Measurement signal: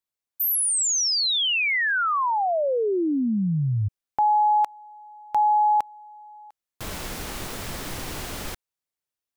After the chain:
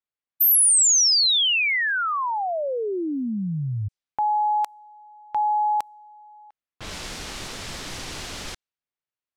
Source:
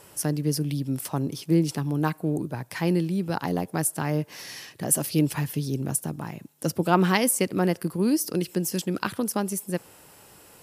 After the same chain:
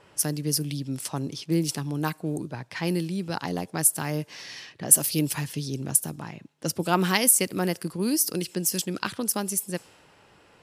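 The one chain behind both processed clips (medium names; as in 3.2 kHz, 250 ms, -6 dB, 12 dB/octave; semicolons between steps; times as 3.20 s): treble shelf 2.6 kHz +10.5 dB; level-controlled noise filter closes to 2.1 kHz, open at -18.5 dBFS; trim -3.5 dB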